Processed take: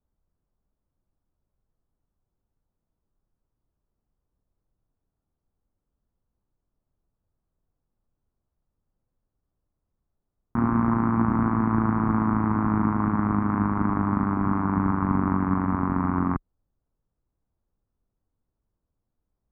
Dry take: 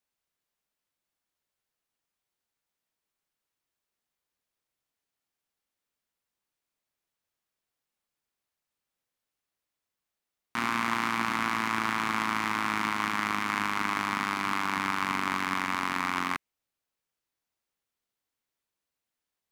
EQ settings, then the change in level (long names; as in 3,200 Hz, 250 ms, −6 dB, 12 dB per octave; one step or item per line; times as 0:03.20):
low-pass filter 1,400 Hz 24 dB per octave
spectral tilt −4.5 dB per octave
low-shelf EQ 200 Hz +5.5 dB
+2.0 dB